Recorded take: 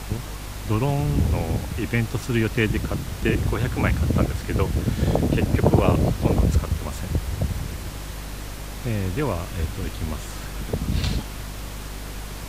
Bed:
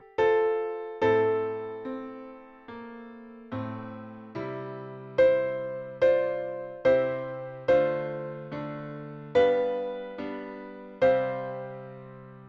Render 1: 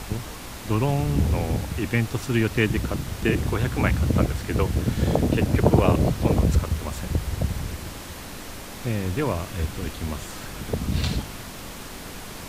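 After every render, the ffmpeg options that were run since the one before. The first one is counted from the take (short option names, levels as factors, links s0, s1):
-af "bandreject=f=50:t=h:w=4,bandreject=f=100:t=h:w=4,bandreject=f=150:t=h:w=4"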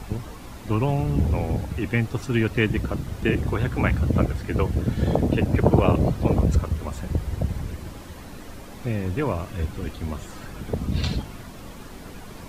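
-af "afftdn=nr=9:nf=-38"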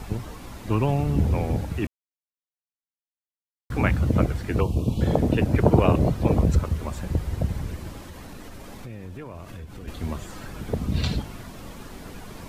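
-filter_complex "[0:a]asettb=1/sr,asplit=3[s0][s1][s2];[s0]atrim=end=4.604[s3];[s1]atrim=start=4.6:end=5.01,asetpts=PTS-STARTPTS,afade=t=in:d=0.004:c=qsin,afade=t=out:st=0.406:d=0.004:c=qsin,asuperstop=centerf=1700:order=12:qfactor=1.4[s4];[s2]atrim=start=5.006[s5];[s3][s4]acrossfade=d=0.004:c1=hsin:c2=qsin[s6];[s6][s5]acrossfade=d=0.004:c1=qsin:c2=hsin,asettb=1/sr,asplit=3[s7][s8][s9];[s7]atrim=end=7.994[s10];[s8]atrim=start=7.99:end=9.88,asetpts=PTS-STARTPTS,afade=t=in:d=0.004:c=qsin,afade=t=out:st=1.886:d=0.004:c=qsin,acompressor=threshold=0.0178:ratio=6:attack=3.2:release=140:knee=1:detection=peak[s11];[s9]atrim=start=9.876[s12];[s10][s11]acrossfade=d=0.004:c1=hsin:c2=qsin[s13];[s13][s12]acrossfade=d=0.004:c1=qsin:c2=hsin,asplit=3[s14][s15][s16];[s14]atrim=end=1.87,asetpts=PTS-STARTPTS,afade=t=out:st=1.866:d=0.004:c=hsin[s17];[s15]atrim=start=1.87:end=3.7,asetpts=PTS-STARTPTS,volume=0[s18];[s16]atrim=start=3.7,asetpts=PTS-STARTPTS,afade=t=in:d=0.004:c=hsin[s19];[s17][s18][s19]concat=n=3:v=0:a=1"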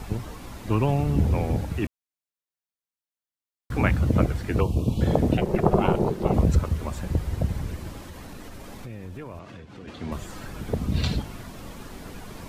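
-filter_complex "[0:a]asettb=1/sr,asplit=3[s0][s1][s2];[s0]atrim=end=5.374[s3];[s1]atrim=start=5.37:end=6.34,asetpts=PTS-STARTPTS,afade=t=in:d=0.004:c=qsin,afade=t=out:st=0.966:d=0.004:c=qsin,aeval=exprs='val(0)*sin(2*PI*280*n/s)':c=same[s4];[s2]atrim=start=6.336[s5];[s3][s4]acrossfade=d=0.004:c1=hsin:c2=qsin[s6];[s6][s5]acrossfade=d=0.004:c1=qsin:c2=hsin,asettb=1/sr,asplit=3[s7][s8][s9];[s7]atrim=end=9.394[s10];[s8]atrim=start=9.39:end=10.12,asetpts=PTS-STARTPTS,afade=t=in:d=0.004:c=qsin,afade=t=out:st=0.726:d=0.004:c=qsin,highpass=130,lowpass=5200[s11];[s9]atrim=start=10.116[s12];[s10][s11]acrossfade=d=0.004:c1=hsin:c2=qsin[s13];[s13][s12]acrossfade=d=0.004:c1=qsin:c2=hsin"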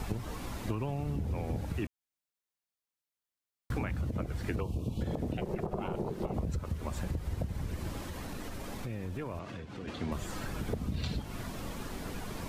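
-af "alimiter=limit=0.2:level=0:latency=1:release=150,acompressor=threshold=0.0282:ratio=6"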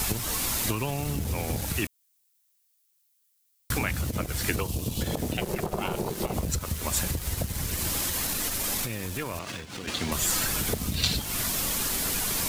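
-filter_complex "[0:a]crystalizer=i=8.5:c=0,asplit=2[s0][s1];[s1]aeval=exprs='val(0)*gte(abs(val(0)),0.0178)':c=same,volume=0.531[s2];[s0][s2]amix=inputs=2:normalize=0"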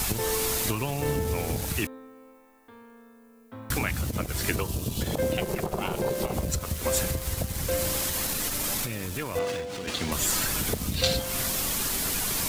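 -filter_complex "[1:a]volume=0.376[s0];[0:a][s0]amix=inputs=2:normalize=0"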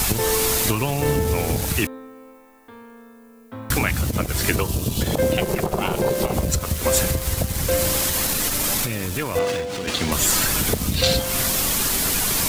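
-af "volume=2.24,alimiter=limit=0.708:level=0:latency=1"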